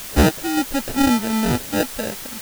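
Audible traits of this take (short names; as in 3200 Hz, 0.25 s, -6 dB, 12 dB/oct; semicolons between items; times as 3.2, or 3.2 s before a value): aliases and images of a low sample rate 1100 Hz, jitter 0%; random-step tremolo; a quantiser's noise floor 6-bit, dither triangular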